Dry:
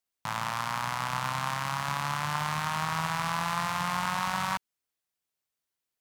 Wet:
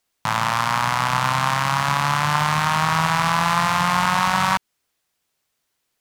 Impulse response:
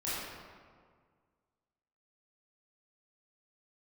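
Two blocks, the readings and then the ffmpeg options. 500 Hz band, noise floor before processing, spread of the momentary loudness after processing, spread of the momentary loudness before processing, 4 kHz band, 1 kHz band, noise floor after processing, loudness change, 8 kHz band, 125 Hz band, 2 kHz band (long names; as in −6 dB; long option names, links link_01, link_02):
+11.0 dB, below −85 dBFS, 2 LU, 2 LU, +10.5 dB, +11.0 dB, −75 dBFS, +11.0 dB, +9.5 dB, +11.0 dB, +11.0 dB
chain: -filter_complex "[0:a]highshelf=frequency=9600:gain=-5,asplit=2[link_01][link_02];[link_02]alimiter=level_in=1dB:limit=-24dB:level=0:latency=1:release=137,volume=-1dB,volume=1dB[link_03];[link_01][link_03]amix=inputs=2:normalize=0,volume=8dB"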